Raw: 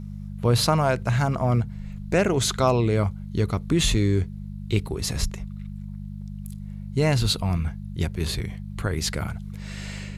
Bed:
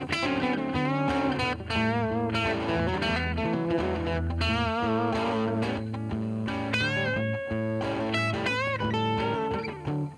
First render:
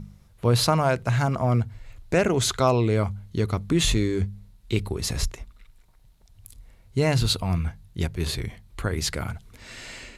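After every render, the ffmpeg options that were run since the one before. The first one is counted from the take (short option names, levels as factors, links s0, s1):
-af "bandreject=f=50:t=h:w=4,bandreject=f=100:t=h:w=4,bandreject=f=150:t=h:w=4,bandreject=f=200:t=h:w=4"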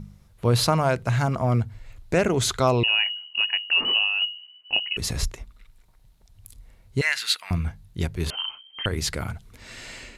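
-filter_complex "[0:a]asettb=1/sr,asplit=3[s0][s1][s2];[s0]atrim=end=2.834[s3];[s1]atrim=start=2.83:end=4.97,asetpts=PTS-STARTPTS,afade=t=in:d=0.004:c=qsin,afade=t=out:st=2.136:d=0.004:c=qsin,lowpass=f=2600:t=q:w=0.5098,lowpass=f=2600:t=q:w=0.6013,lowpass=f=2600:t=q:w=0.9,lowpass=f=2600:t=q:w=2.563,afreqshift=-3000[s4];[s2]atrim=start=4.966[s5];[s3][s4]acrossfade=d=0.004:c1=hsin:c2=qsin[s6];[s6][s5]acrossfade=d=0.004:c1=qsin:c2=hsin,asettb=1/sr,asplit=3[s7][s8][s9];[s7]atrim=end=7.014[s10];[s8]atrim=start=7.01:end=7.51,asetpts=PTS-STARTPTS,afade=t=in:d=0.004:c=qsin,afade=t=out:st=0.496:d=0.004:c=qsin,highpass=f=1800:t=q:w=3.6[s11];[s9]atrim=start=7.506[s12];[s10][s11]acrossfade=d=0.004:c1=hsin:c2=qsin[s13];[s13][s12]acrossfade=d=0.004:c1=qsin:c2=hsin,asettb=1/sr,asplit=3[s14][s15][s16];[s14]atrim=end=8.304[s17];[s15]atrim=start=8.3:end=8.86,asetpts=PTS-STARTPTS,afade=t=in:d=0.004:c=qsin,afade=t=out:st=0.556:d=0.004:c=qsin,lowpass=f=2700:t=q:w=0.5098,lowpass=f=2700:t=q:w=0.6013,lowpass=f=2700:t=q:w=0.9,lowpass=f=2700:t=q:w=2.563,afreqshift=-3200[s18];[s16]atrim=start=8.856[s19];[s17][s18]acrossfade=d=0.004:c1=hsin:c2=qsin[s20];[s20][s19]acrossfade=d=0.004:c1=qsin:c2=hsin"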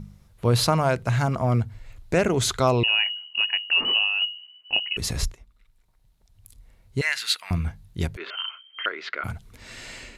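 -filter_complex "[0:a]asettb=1/sr,asplit=3[s0][s1][s2];[s0]atrim=end=8.174[s3];[s1]atrim=start=8.17:end=9.24,asetpts=PTS-STARTPTS,afade=t=in:d=0.004:c=qsin,afade=t=out:st=1.066:d=0.004:c=qsin,highpass=f=400:w=0.5412,highpass=f=400:w=1.3066,equalizer=f=490:t=q:w=4:g=-6,equalizer=f=830:t=q:w=4:g=-10,equalizer=f=1400:t=q:w=4:g=9,equalizer=f=2100:t=q:w=4:g=4,lowpass=f=3300:w=0.5412,lowpass=f=3300:w=1.3066[s4];[s2]atrim=start=9.236[s5];[s3][s4]acrossfade=d=0.004:c1=hsin:c2=qsin[s6];[s6][s5]acrossfade=d=0.004:c1=qsin:c2=hsin,asplit=2[s7][s8];[s7]atrim=end=5.34,asetpts=PTS-STARTPTS,afade=t=out:st=5.336:d=0.004:c=hsin:silence=0.251189[s9];[s8]atrim=start=5.34,asetpts=PTS-STARTPTS,afade=t=in:d=2.16:silence=0.251189[s10];[s9][s10]concat=n=2:v=0:a=1"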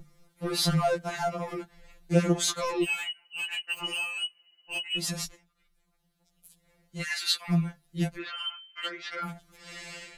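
-filter_complex "[0:a]acrossover=split=320|4200[s0][s1][s2];[s1]asoftclip=type=tanh:threshold=0.0794[s3];[s0][s3][s2]amix=inputs=3:normalize=0,afftfilt=real='re*2.83*eq(mod(b,8),0)':imag='im*2.83*eq(mod(b,8),0)':win_size=2048:overlap=0.75"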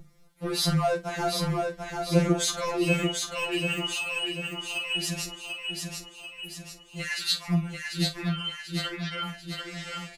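-filter_complex "[0:a]asplit=2[s0][s1];[s1]adelay=45,volume=0.251[s2];[s0][s2]amix=inputs=2:normalize=0,aecho=1:1:741|1482|2223|2964|3705|4446:0.631|0.315|0.158|0.0789|0.0394|0.0197"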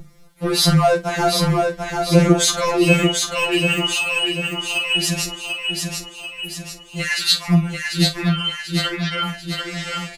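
-af "volume=3.16,alimiter=limit=0.891:level=0:latency=1"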